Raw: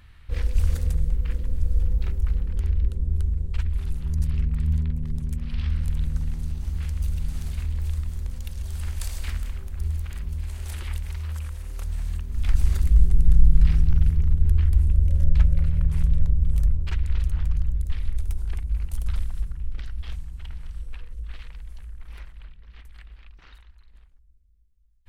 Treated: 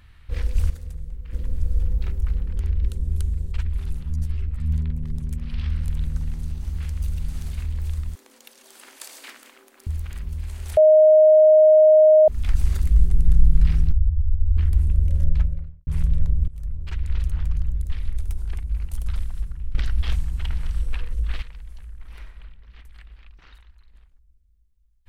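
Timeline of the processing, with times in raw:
0.7–1.33 gain -10.5 dB
2.83–3.52 high shelf 2500 Hz +10.5 dB
4.03–4.7 ensemble effect
8.15–9.87 elliptic high-pass 270 Hz, stop band 50 dB
10.77–12.28 bleep 621 Hz -9 dBFS
13.92–14.57 spectral contrast raised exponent 2.1
15.17–15.87 studio fade out
16.48–17.14 fade in, from -22.5 dB
19.75–21.42 gain +10 dB
21.96–22.36 reverb throw, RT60 1.1 s, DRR 5.5 dB

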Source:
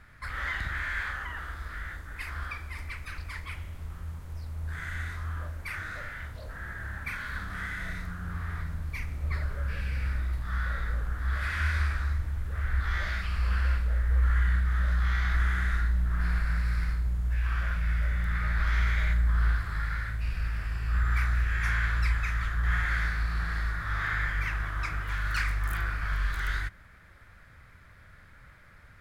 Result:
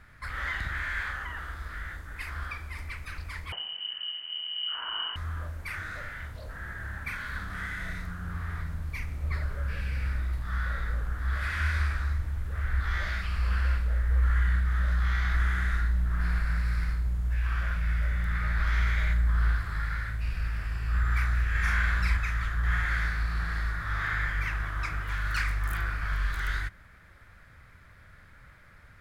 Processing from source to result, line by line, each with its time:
3.52–5.16 inverted band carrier 3000 Hz
21.51–22.17 doubler 40 ms -2.5 dB

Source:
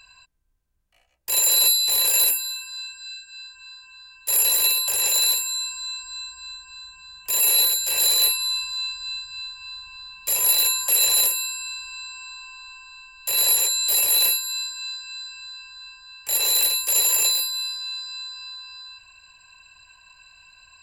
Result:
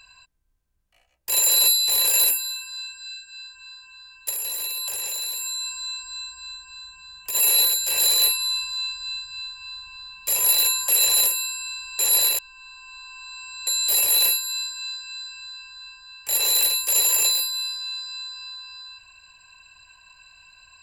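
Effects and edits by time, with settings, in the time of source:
4.29–7.35 compressor 10:1, threshold -25 dBFS
11.99–13.67 reverse

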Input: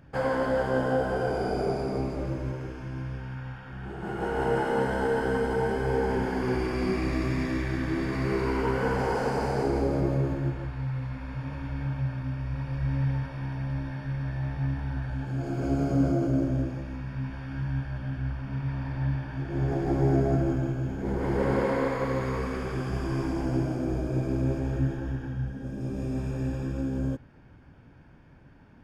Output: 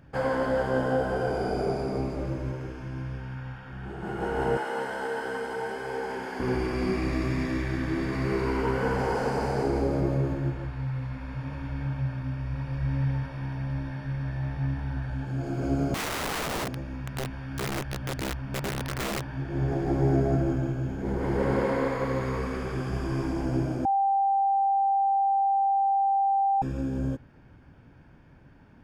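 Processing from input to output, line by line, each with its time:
4.57–6.4 HPF 800 Hz 6 dB/oct
15.94–19.37 wrapped overs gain 26 dB
23.85–26.62 bleep 787 Hz -20.5 dBFS

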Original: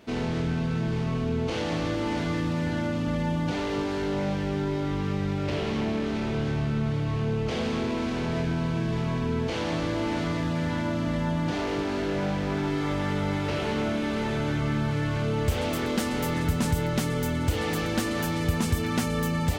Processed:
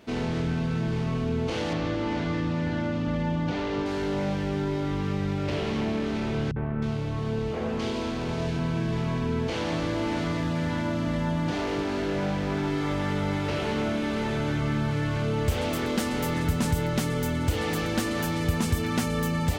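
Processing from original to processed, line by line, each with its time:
1.73–3.86 air absorption 87 m
6.51–8.59 three bands offset in time lows, mids, highs 50/310 ms, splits 180/2000 Hz

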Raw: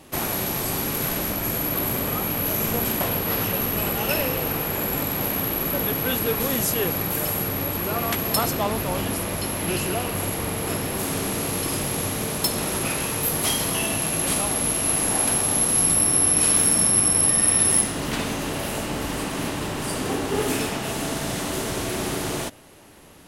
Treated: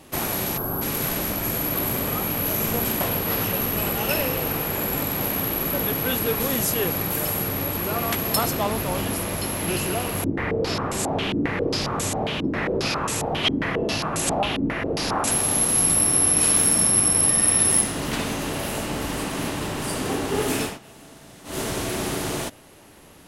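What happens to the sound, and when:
0.57–0.82 spectral gain 1700–11000 Hz -18 dB
10.24–15.31 stepped low-pass 7.4 Hz 300–7800 Hz
20.63–21.6 dip -18.5 dB, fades 0.16 s

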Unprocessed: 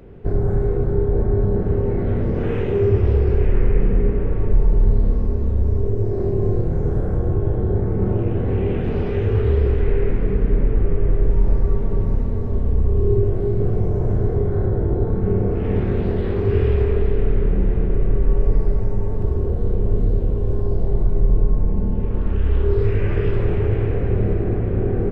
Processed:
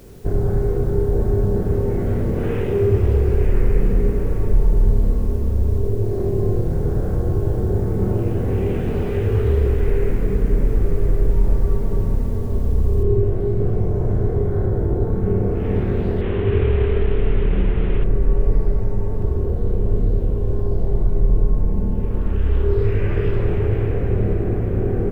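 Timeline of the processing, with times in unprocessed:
13.03 noise floor step -55 dB -67 dB
16.21–18.04 delta modulation 16 kbps, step -28.5 dBFS

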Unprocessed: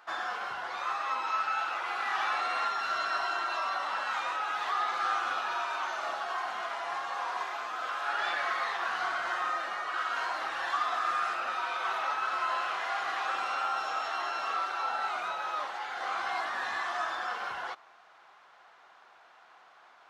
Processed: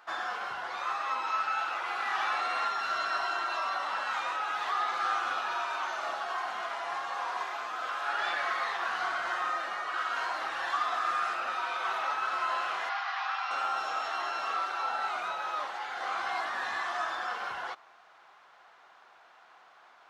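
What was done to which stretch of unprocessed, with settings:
12.89–13.51 Chebyshev band-pass 790–5400 Hz, order 3

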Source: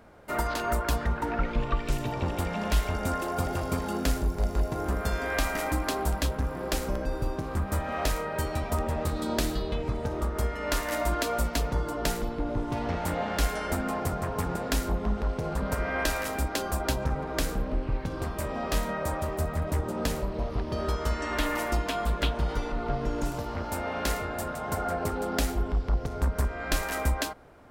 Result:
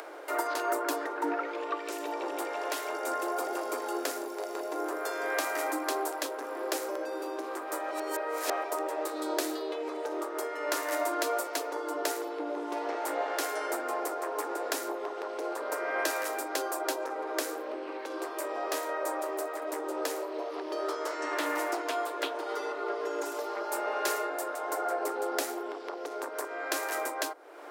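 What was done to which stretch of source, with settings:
0.71–1.33 bell 280 Hz +7 dB
7.91–8.64 reverse
20.84–21.93 Doppler distortion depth 0.24 ms
22.46–24.3 comb 4.9 ms, depth 66%
whole clip: steep high-pass 300 Hz 96 dB/oct; dynamic EQ 3100 Hz, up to -5 dB, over -47 dBFS, Q 1.2; upward compressor, threshold -34 dBFS

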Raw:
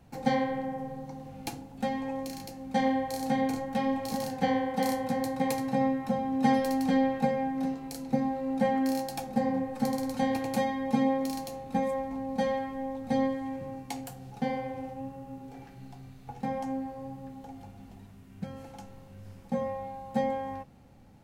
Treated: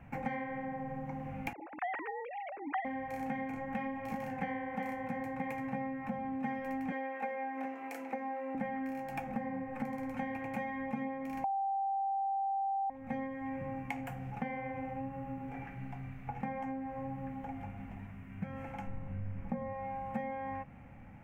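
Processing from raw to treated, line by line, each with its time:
1.53–2.85 sine-wave speech
6.92–8.55 HPF 330 Hz 24 dB/oct
11.44–12.9 bleep 784 Hz -17 dBFS
18.87–19.73 tilt -2 dB/oct
whole clip: resonant high shelf 3100 Hz -11 dB, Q 3; compressor 6:1, threshold -38 dBFS; fifteen-band EQ 400 Hz -8 dB, 4000 Hz -4 dB, 10000 Hz -6 dB; gain +4 dB

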